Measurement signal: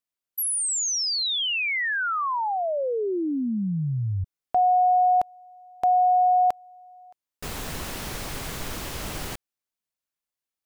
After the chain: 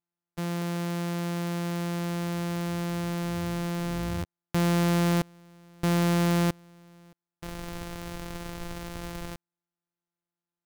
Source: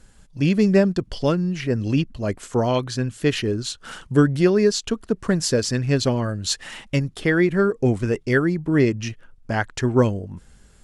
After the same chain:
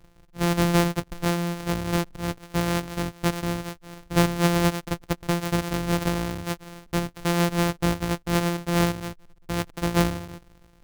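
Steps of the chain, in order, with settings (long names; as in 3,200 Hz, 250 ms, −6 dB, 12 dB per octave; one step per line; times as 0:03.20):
samples sorted by size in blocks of 256 samples
level −4.5 dB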